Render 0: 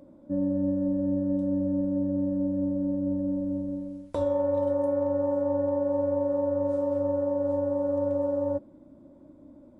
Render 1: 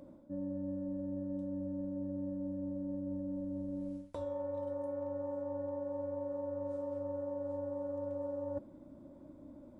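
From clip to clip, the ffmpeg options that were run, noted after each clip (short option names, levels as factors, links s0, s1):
-af "equalizer=f=330:t=o:w=1.8:g=-2.5,areverse,acompressor=threshold=0.0141:ratio=6,areverse"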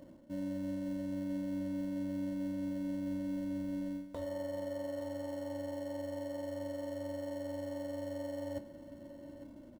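-filter_complex "[0:a]asplit=2[s0][s1];[s1]acrusher=samples=36:mix=1:aa=0.000001,volume=0.251[s2];[s0][s2]amix=inputs=2:normalize=0,asplit=2[s3][s4];[s4]adelay=25,volume=0.224[s5];[s3][s5]amix=inputs=2:normalize=0,aecho=1:1:853:0.2,volume=0.841"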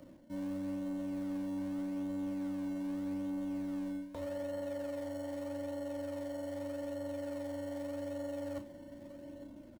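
-filter_complex "[0:a]acrossover=split=390|420|4100[s0][s1][s2][s3];[s1]acrusher=samples=24:mix=1:aa=0.000001:lfo=1:lforange=24:lforate=0.82[s4];[s0][s4][s2][s3]amix=inputs=4:normalize=0,asplit=2[s5][s6];[s6]adelay=35,volume=0.282[s7];[s5][s7]amix=inputs=2:normalize=0,asoftclip=type=tanh:threshold=0.0251"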